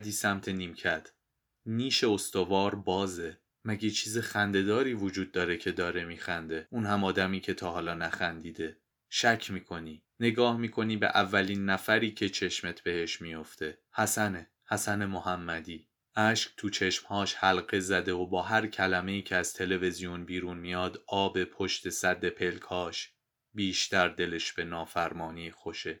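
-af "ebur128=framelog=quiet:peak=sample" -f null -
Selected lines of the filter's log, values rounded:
Integrated loudness:
  I:         -30.8 LUFS
  Threshold: -41.1 LUFS
Loudness range:
  LRA:         3.4 LU
  Threshold: -51.0 LUFS
  LRA low:   -32.6 LUFS
  LRA high:  -29.2 LUFS
Sample peak:
  Peak:       -9.2 dBFS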